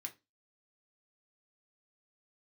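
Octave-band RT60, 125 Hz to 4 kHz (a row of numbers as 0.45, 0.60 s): 0.25, 0.35, 0.25, 0.20, 0.20, 0.20 s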